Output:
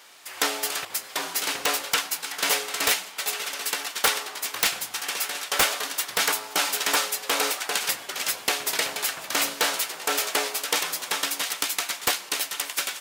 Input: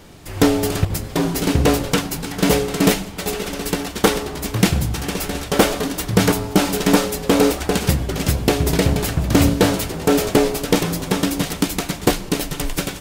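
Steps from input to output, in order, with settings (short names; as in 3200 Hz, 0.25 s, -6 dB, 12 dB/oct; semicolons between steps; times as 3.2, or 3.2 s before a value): HPF 1100 Hz 12 dB/oct; wrapped overs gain 9 dB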